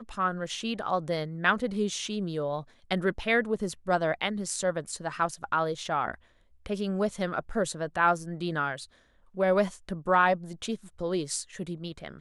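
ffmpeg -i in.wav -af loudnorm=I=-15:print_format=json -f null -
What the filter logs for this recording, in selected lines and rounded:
"input_i" : "-29.3",
"input_tp" : "-9.2",
"input_lra" : "1.9",
"input_thresh" : "-39.6",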